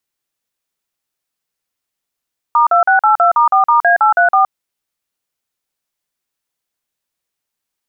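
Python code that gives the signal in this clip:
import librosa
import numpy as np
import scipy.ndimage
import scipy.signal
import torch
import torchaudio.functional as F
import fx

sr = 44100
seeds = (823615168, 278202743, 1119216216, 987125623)

y = fx.dtmf(sr, digits='*2682*4*A834', tone_ms=118, gap_ms=44, level_db=-10.0)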